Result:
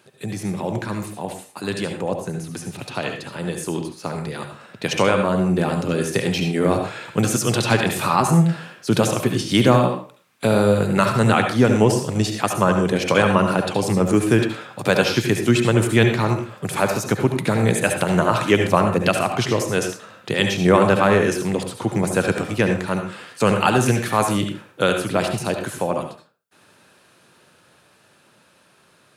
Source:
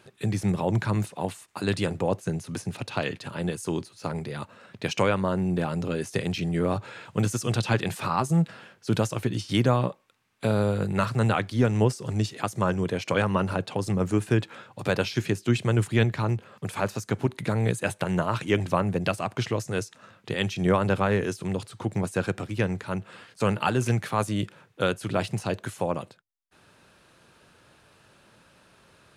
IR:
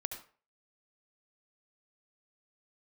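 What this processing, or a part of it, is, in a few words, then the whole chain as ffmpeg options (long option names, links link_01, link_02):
far laptop microphone: -filter_complex "[1:a]atrim=start_sample=2205[link_01];[0:a][link_01]afir=irnorm=-1:irlink=0,highpass=130,dynaudnorm=framelen=690:gausssize=13:maxgain=9dB,highshelf=frequency=8000:gain=6.5,volume=1.5dB"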